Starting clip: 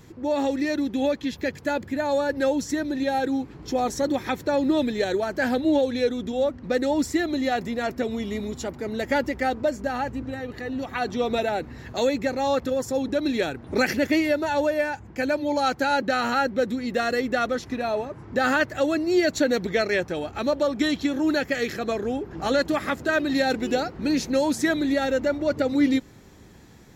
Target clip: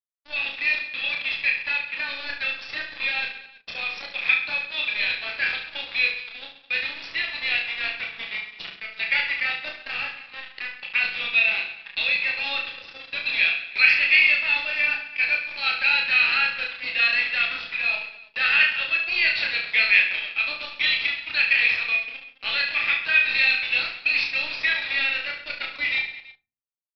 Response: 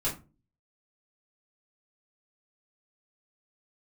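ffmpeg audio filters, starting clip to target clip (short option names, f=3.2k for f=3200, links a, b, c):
-filter_complex "[0:a]highpass=f=2.5k:t=q:w=8.2,acrusher=bits=4:mix=0:aa=0.5,asplit=2[a][b];[b]adelay=36,volume=-8.5dB[c];[a][c]amix=inputs=2:normalize=0,aecho=1:1:30|72|130.8|213.1|328.4:0.631|0.398|0.251|0.158|0.1,asplit=2[d][e];[1:a]atrim=start_sample=2205,lowpass=f=5.3k:w=0.5412,lowpass=f=5.3k:w=1.3066[f];[e][f]afir=irnorm=-1:irlink=0,volume=-16.5dB[g];[d][g]amix=inputs=2:normalize=0,aresample=11025,aresample=44100"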